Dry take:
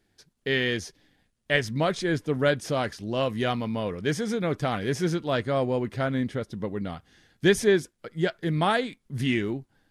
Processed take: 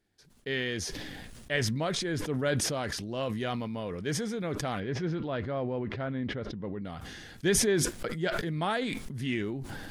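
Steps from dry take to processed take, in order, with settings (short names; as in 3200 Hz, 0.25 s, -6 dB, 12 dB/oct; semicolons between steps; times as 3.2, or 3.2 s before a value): 4.8–6.85 air absorption 250 m; sustainer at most 23 dB/s; gain -7 dB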